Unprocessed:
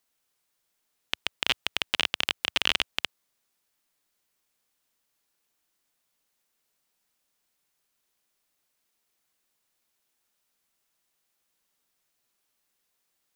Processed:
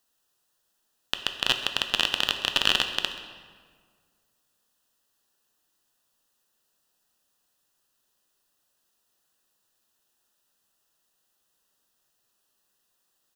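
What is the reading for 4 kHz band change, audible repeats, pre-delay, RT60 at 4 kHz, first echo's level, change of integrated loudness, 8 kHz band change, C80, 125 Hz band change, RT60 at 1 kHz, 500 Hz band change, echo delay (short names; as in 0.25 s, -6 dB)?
+3.0 dB, 1, 8 ms, 1.2 s, -17.5 dB, +2.5 dB, +3.0 dB, 9.0 dB, +3.5 dB, 1.7 s, +3.5 dB, 0.131 s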